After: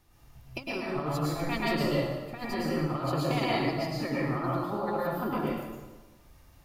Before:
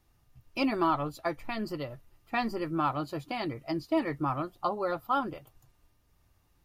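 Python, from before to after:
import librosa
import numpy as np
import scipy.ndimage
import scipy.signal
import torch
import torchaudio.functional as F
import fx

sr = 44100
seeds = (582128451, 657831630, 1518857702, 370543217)

y = fx.hum_notches(x, sr, base_hz=60, count=9)
y = fx.over_compress(y, sr, threshold_db=-35.0, ratio=-0.5)
y = fx.rev_plate(y, sr, seeds[0], rt60_s=1.2, hf_ratio=0.8, predelay_ms=95, drr_db=-6.0)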